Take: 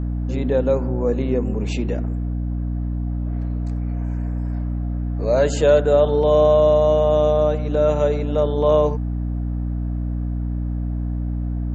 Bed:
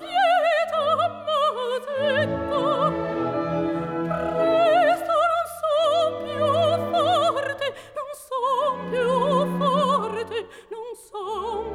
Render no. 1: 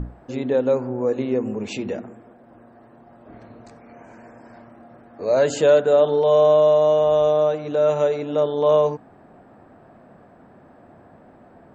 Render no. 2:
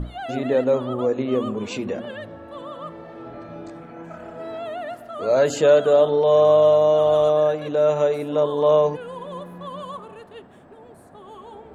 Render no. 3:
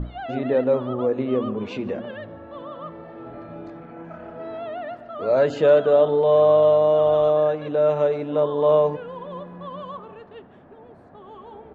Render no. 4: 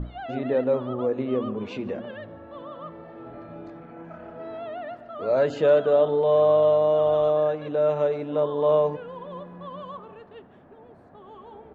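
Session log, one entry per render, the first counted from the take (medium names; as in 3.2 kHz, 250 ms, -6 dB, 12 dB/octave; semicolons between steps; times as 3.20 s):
hum notches 60/120/180/240/300 Hz
add bed -13.5 dB
distance through air 230 m; delay 149 ms -23.5 dB
trim -3 dB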